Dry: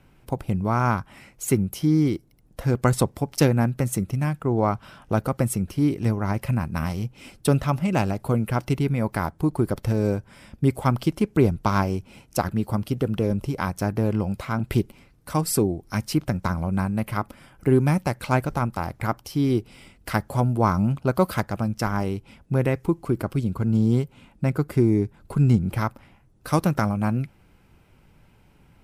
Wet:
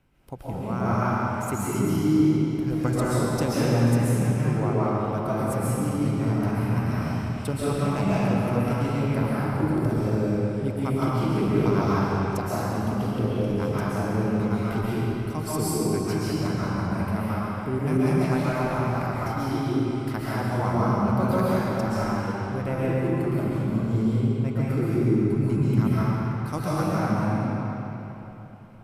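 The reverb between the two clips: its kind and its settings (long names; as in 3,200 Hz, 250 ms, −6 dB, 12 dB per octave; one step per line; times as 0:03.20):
comb and all-pass reverb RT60 3.6 s, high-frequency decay 0.8×, pre-delay 95 ms, DRR −9.5 dB
level −10.5 dB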